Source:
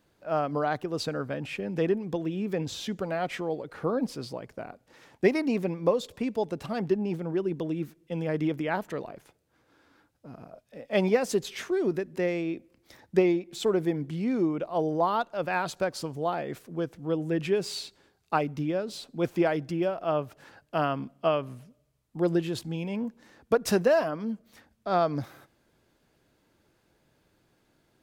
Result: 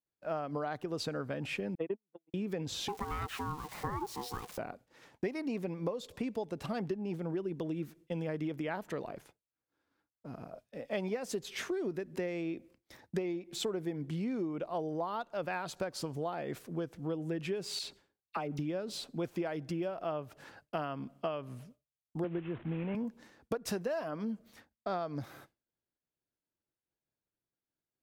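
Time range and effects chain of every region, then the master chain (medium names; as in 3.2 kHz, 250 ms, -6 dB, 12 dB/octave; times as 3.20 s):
1.75–2.34 s: gate -25 dBFS, range -51 dB + cabinet simulation 150–2900 Hz, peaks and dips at 170 Hz -4 dB, 1.2 kHz -5 dB, 1.7 kHz -8 dB
2.88–4.58 s: zero-crossing glitches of -29.5 dBFS + treble shelf 5.6 kHz -9.5 dB + ring modulator 610 Hz
17.79–18.59 s: compression 2:1, threshold -32 dBFS + phase dispersion lows, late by 44 ms, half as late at 1.4 kHz
22.24–22.95 s: CVSD coder 16 kbps + distance through air 160 m + three bands compressed up and down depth 40%
whole clip: expander -50 dBFS; compression 6:1, threshold -33 dBFS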